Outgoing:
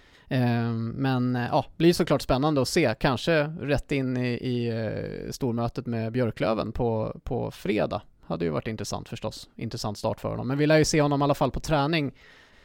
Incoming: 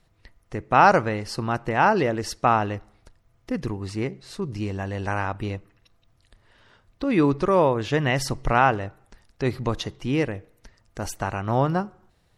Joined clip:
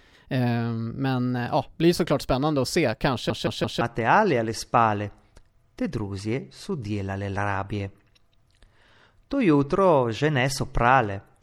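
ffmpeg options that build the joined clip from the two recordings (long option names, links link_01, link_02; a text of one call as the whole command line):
ffmpeg -i cue0.wav -i cue1.wav -filter_complex "[0:a]apad=whole_dur=11.42,atrim=end=11.42,asplit=4[link_01][link_02][link_03][link_04];[link_01]atrim=end=3.302[link_05];[link_02]atrim=start=3.128:end=3.302[link_06];[link_03]atrim=start=3.128:end=3.302[link_07];[link_04]atrim=start=3.128:end=3.302[link_08];[1:a]atrim=start=1.508:end=9.12[link_09];[link_05][link_06]acrossfade=duration=0.004:curve1=hsin:curve2=hsin[link_10];[link_10][link_07]acrossfade=duration=0.004:curve1=hsin:curve2=hsin[link_11];[link_11][link_08]acrossfade=duration=0.004:curve1=hsin:curve2=hsin[link_12];[link_12][link_09]acrossfade=duration=0.004:curve1=hsin:curve2=hsin" out.wav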